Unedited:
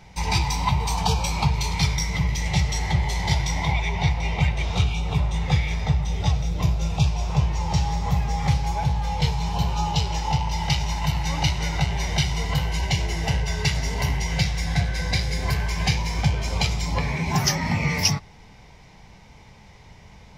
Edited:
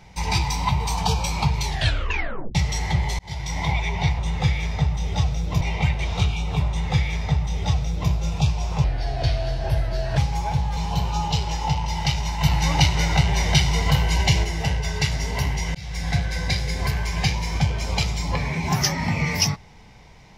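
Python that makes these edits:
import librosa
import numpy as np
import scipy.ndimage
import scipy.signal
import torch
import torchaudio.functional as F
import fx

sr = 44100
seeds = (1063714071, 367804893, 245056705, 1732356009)

y = fx.edit(x, sr, fx.tape_stop(start_s=1.63, length_s=0.92),
    fx.fade_in_span(start_s=3.19, length_s=0.45),
    fx.duplicate(start_s=5.27, length_s=1.42, to_s=4.19),
    fx.speed_span(start_s=7.42, length_s=1.07, speed=0.8),
    fx.cut(start_s=9.08, length_s=0.32),
    fx.clip_gain(start_s=11.06, length_s=2.02, db=4.5),
    fx.fade_in_span(start_s=14.38, length_s=0.42, curve='qsin'), tone=tone)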